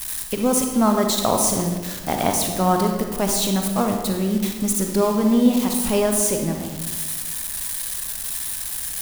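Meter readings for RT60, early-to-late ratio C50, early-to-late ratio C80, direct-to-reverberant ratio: 1.4 s, 4.0 dB, 6.0 dB, 3.0 dB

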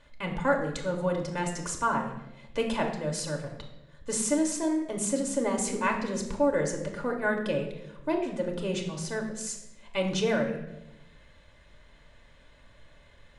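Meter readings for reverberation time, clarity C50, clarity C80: 0.95 s, 7.0 dB, 9.5 dB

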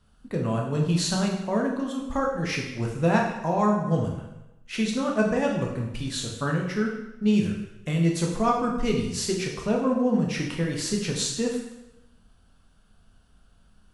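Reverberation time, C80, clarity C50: 0.95 s, 6.5 dB, 4.5 dB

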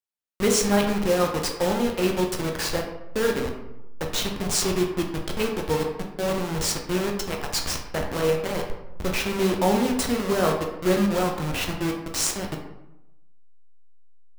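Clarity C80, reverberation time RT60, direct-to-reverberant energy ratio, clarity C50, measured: 8.5 dB, 0.90 s, 1.0 dB, 5.5 dB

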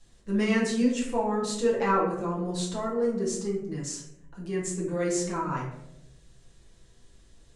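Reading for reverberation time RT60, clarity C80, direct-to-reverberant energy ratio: 0.85 s, 8.0 dB, −5.5 dB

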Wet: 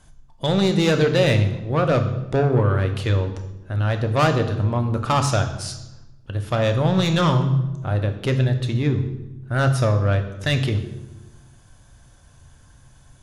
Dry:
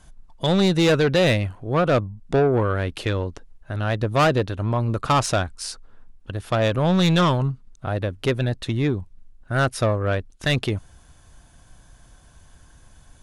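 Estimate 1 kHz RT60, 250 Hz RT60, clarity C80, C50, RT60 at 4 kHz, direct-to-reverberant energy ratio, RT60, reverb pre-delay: 0.95 s, 1.4 s, 12.0 dB, 10.0 dB, 0.75 s, 6.5 dB, 1.1 s, 3 ms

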